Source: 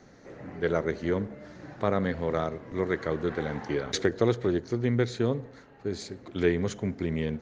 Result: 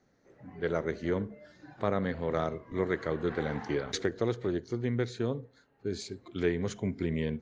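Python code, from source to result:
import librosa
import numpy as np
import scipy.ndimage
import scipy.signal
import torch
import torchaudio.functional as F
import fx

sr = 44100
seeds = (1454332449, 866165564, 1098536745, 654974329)

y = fx.noise_reduce_blind(x, sr, reduce_db=11)
y = fx.rider(y, sr, range_db=5, speed_s=0.5)
y = F.gain(torch.from_numpy(y), -3.0).numpy()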